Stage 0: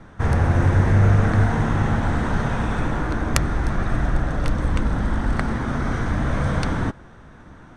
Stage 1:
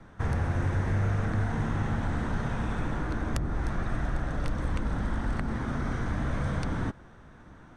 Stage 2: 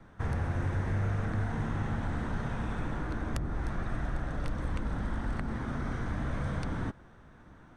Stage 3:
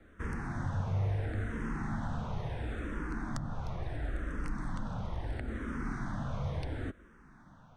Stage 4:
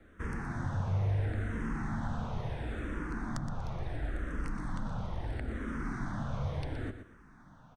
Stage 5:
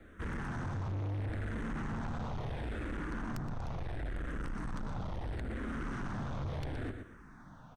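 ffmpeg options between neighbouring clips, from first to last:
-filter_complex "[0:a]acrossover=split=370|1200[a][b][c];[a]acompressor=threshold=-18dB:ratio=4[d];[b]acompressor=threshold=-33dB:ratio=4[e];[c]acompressor=threshold=-34dB:ratio=4[f];[d][e][f]amix=inputs=3:normalize=0,volume=-6.5dB"
-af "equalizer=f=6.3k:w=1.5:g=-2,volume=-3.5dB"
-filter_complex "[0:a]asplit=2[a][b];[b]afreqshift=-0.73[c];[a][c]amix=inputs=2:normalize=1"
-af "aecho=1:1:120|240|360:0.299|0.0687|0.0158"
-af "asoftclip=type=tanh:threshold=-37dB,volume=3dB"

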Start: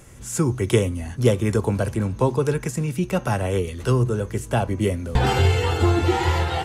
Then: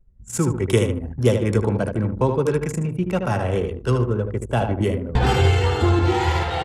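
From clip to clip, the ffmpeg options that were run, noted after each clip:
-af "aecho=1:1:76|152|228|304|380:0.501|0.221|0.097|0.0427|0.0188,anlmdn=63.1"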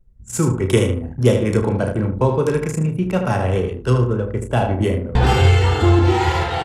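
-filter_complex "[0:a]asplit=2[a][b];[b]adelay=32,volume=-7.5dB[c];[a][c]amix=inputs=2:normalize=0,volume=2dB"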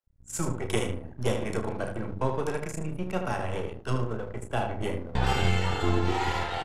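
-filter_complex "[0:a]bandreject=f=50:t=h:w=6,bandreject=f=100:t=h:w=6,bandreject=f=150:t=h:w=6,bandreject=f=200:t=h:w=6,bandreject=f=250:t=h:w=6,acrossover=split=660|2800[a][b][c];[a]aeval=exprs='max(val(0),0)':c=same[d];[d][b][c]amix=inputs=3:normalize=0,volume=-8dB"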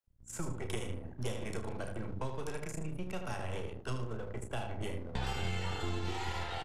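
-filter_complex "[0:a]acrossover=split=110|2500[a][b][c];[a]acompressor=threshold=-32dB:ratio=4[d];[b]acompressor=threshold=-36dB:ratio=4[e];[c]acompressor=threshold=-42dB:ratio=4[f];[d][e][f]amix=inputs=3:normalize=0,volume=-3dB"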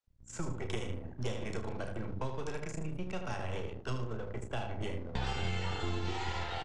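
-af "lowpass=f=7.3k:w=0.5412,lowpass=f=7.3k:w=1.3066,volume=1dB"

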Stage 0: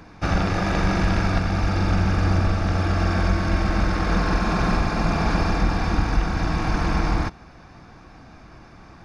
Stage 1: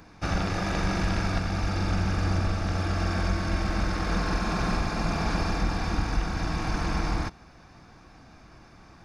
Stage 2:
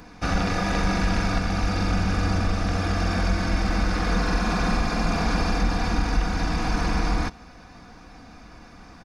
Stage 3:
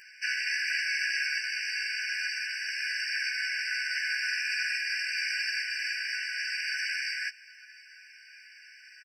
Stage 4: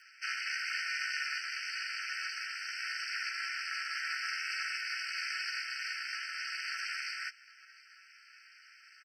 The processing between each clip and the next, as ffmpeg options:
-af "highshelf=f=5k:g=8,volume=-6dB"
-filter_complex "[0:a]aecho=1:1:4.1:0.44,asplit=2[a][b];[b]alimiter=limit=-23dB:level=0:latency=1,volume=-2.5dB[c];[a][c]amix=inputs=2:normalize=0"
-filter_complex "[0:a]asplit=2[a][b];[b]adelay=14,volume=-2.5dB[c];[a][c]amix=inputs=2:normalize=0,afftfilt=real='re*eq(mod(floor(b*sr/1024/1500),2),1)':imag='im*eq(mod(floor(b*sr/1024/1500),2),1)':win_size=1024:overlap=0.75,volume=2dB"
-af "aeval=exprs='val(0)*sin(2*PI*170*n/s)':c=same,volume=-3dB"

